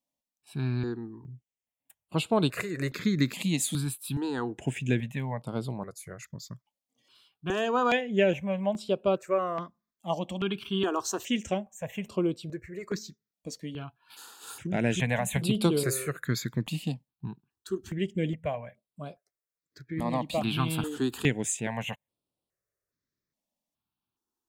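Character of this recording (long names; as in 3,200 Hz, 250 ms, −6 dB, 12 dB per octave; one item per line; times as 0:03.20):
notches that jump at a steady rate 2.4 Hz 390–6,400 Hz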